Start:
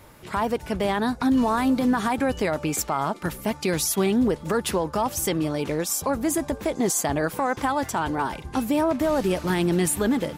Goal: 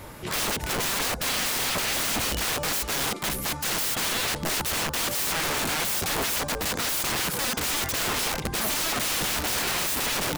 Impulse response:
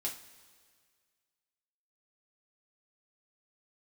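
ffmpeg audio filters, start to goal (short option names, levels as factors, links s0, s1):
-af "aeval=exprs='(mod(29.9*val(0)+1,2)-1)/29.9':c=same,volume=2.37"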